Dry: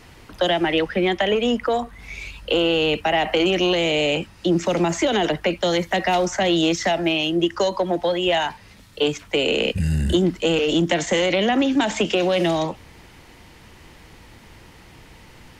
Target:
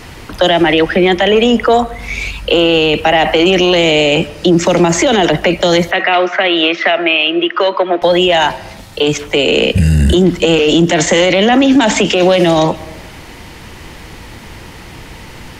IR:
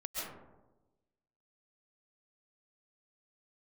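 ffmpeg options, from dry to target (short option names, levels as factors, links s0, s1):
-filter_complex "[0:a]asettb=1/sr,asplit=3[s0][s1][s2];[s0]atrim=end=5.914[s3];[s1]atrim=start=5.91:end=8.02,asetpts=PTS-STARTPTS,afade=t=in:d=0.004:c=qsin,afade=t=out:st=2.106:d=0.004:c=qsin,highpass=f=300:w=0.5412,highpass=f=300:w=1.3066,equalizer=f=310:t=q:w=4:g=-8,equalizer=f=520:t=q:w=4:g=-6,equalizer=f=850:t=q:w=4:g=-8,equalizer=f=1300:t=q:w=4:g=5,equalizer=f=2400:t=q:w=4:g=4,lowpass=f=3200:w=0.5412,lowpass=f=3200:w=1.3066[s4];[s2]atrim=start=8.016[s5];[s3][s4]acrossfade=d=0.004:c1=hsin:c2=qsin[s6];[s6][s5]acrossfade=d=0.004:c1=qsin:c2=hsin,asplit=2[s7][s8];[1:a]atrim=start_sample=2205[s9];[s8][s9]afir=irnorm=-1:irlink=0,volume=0.0631[s10];[s7][s10]amix=inputs=2:normalize=0,alimiter=level_in=5.31:limit=0.891:release=50:level=0:latency=1,volume=0.891"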